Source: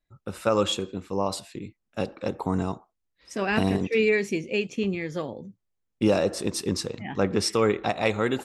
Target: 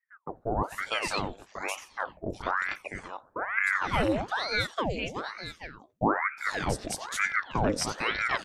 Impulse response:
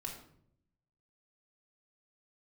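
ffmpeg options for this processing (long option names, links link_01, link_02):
-filter_complex "[0:a]acrossover=split=630|4000[link_01][link_02][link_03];[link_03]adelay=360[link_04];[link_02]adelay=450[link_05];[link_01][link_05][link_04]amix=inputs=3:normalize=0,aeval=exprs='val(0)*sin(2*PI*1000*n/s+1000*0.9/1.1*sin(2*PI*1.1*n/s))':channel_layout=same"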